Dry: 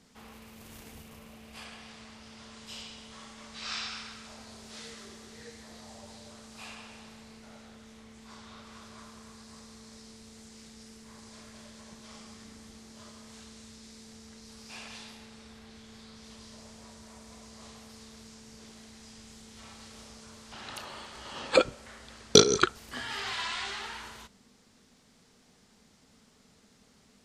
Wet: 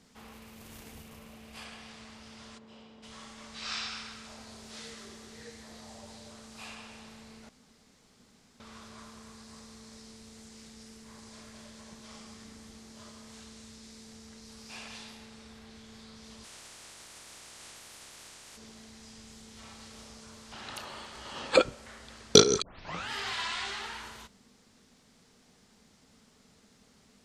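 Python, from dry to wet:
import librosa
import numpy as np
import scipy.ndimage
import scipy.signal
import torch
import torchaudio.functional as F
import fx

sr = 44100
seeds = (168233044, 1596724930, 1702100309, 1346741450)

y = fx.bandpass_q(x, sr, hz=360.0, q=0.66, at=(2.57, 3.02), fade=0.02)
y = fx.spec_clip(y, sr, under_db=28, at=(16.43, 18.56), fade=0.02)
y = fx.edit(y, sr, fx.room_tone_fill(start_s=7.49, length_s=1.11),
    fx.tape_start(start_s=22.62, length_s=0.48), tone=tone)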